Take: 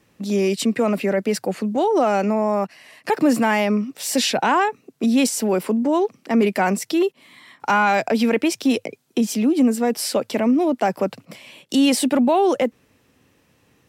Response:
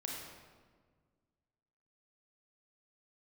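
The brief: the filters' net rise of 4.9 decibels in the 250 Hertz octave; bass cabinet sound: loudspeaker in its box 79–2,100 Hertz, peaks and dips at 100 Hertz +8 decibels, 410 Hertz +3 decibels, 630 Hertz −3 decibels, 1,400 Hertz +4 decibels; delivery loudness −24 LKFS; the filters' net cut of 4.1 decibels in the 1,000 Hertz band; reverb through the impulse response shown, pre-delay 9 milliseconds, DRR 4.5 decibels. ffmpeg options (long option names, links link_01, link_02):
-filter_complex "[0:a]equalizer=frequency=250:width_type=o:gain=5.5,equalizer=frequency=1000:width_type=o:gain=-6,asplit=2[link_01][link_02];[1:a]atrim=start_sample=2205,adelay=9[link_03];[link_02][link_03]afir=irnorm=-1:irlink=0,volume=-4.5dB[link_04];[link_01][link_04]amix=inputs=2:normalize=0,highpass=frequency=79:width=0.5412,highpass=frequency=79:width=1.3066,equalizer=frequency=100:width_type=q:width=4:gain=8,equalizer=frequency=410:width_type=q:width=4:gain=3,equalizer=frequency=630:width_type=q:width=4:gain=-3,equalizer=frequency=1400:width_type=q:width=4:gain=4,lowpass=frequency=2100:width=0.5412,lowpass=frequency=2100:width=1.3066,volume=-8.5dB"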